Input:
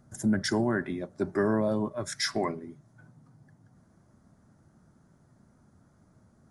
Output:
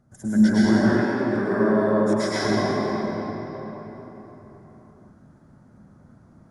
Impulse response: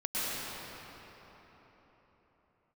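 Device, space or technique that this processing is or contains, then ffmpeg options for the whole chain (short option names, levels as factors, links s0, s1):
swimming-pool hall: -filter_complex "[1:a]atrim=start_sample=2205[s0];[0:a][s0]afir=irnorm=-1:irlink=0,highshelf=f=3700:g=-7,asettb=1/sr,asplit=3[s1][s2][s3];[s1]atrim=end=1.044[s4];[s2]atrim=start=1.04:end=2.45,asetpts=PTS-STARTPTS,afade=t=in:d=0.004:c=qsin,afade=t=out:st=1.406:d=0.004:c=qsin,highpass=f=250:p=1[s5];[s3]atrim=start=2.446[s6];[s4][s5]acrossfade=d=0.004:c1=hsin:c2=qsin[s7];[s7][s6]acrossfade=d=0.004:c1=qsin:c2=hsin"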